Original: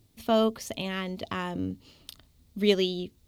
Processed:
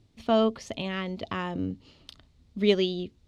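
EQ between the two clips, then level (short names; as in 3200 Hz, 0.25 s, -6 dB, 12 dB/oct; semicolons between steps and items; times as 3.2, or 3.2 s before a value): air absorption 93 m; +1.0 dB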